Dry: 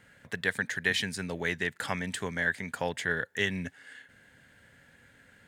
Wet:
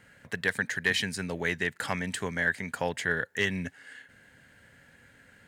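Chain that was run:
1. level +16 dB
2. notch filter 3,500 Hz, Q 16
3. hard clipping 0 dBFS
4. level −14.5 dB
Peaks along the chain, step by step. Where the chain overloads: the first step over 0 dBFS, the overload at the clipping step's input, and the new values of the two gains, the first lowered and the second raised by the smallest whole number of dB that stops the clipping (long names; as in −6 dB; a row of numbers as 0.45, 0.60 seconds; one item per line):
+4.0, +4.0, 0.0, −14.5 dBFS
step 1, 4.0 dB
step 1 +12 dB, step 4 −10.5 dB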